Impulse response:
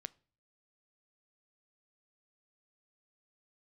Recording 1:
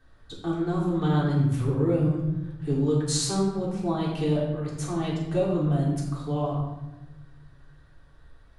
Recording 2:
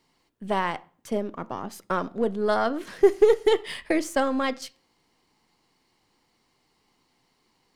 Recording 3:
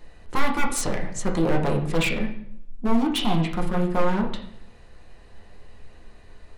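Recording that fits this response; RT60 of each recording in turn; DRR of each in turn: 2; 1.1, 0.40, 0.65 s; -6.5, 17.5, 0.0 dB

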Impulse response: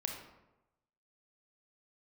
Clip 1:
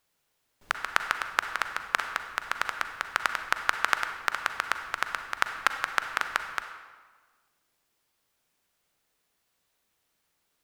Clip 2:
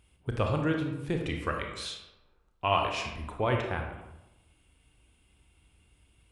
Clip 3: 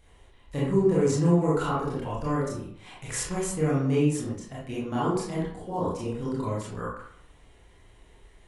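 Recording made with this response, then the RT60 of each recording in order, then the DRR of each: 2; 1.5, 0.95, 0.65 s; 7.0, 2.0, -7.5 dB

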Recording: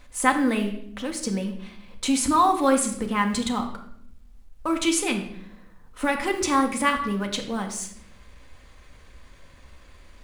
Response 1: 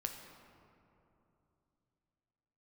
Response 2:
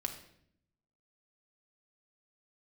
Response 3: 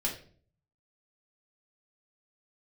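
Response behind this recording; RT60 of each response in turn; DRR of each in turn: 2; 3.0, 0.65, 0.45 s; 3.5, 3.5, -3.5 dB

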